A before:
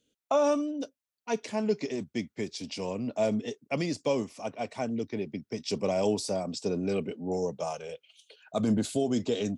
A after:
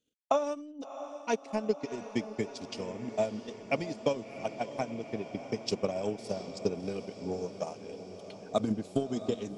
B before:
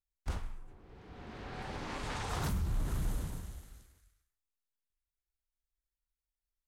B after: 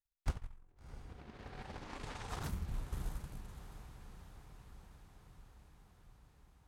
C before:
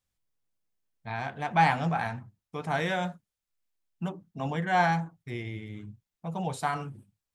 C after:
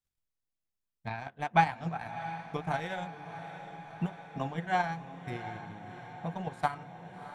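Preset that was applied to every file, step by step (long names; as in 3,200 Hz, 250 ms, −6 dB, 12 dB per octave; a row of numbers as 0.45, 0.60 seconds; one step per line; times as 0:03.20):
transient designer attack +12 dB, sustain −11 dB
feedback delay with all-pass diffusion 687 ms, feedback 70%, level −12 dB
level −9 dB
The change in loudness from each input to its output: −3.5, −8.0, −4.5 LU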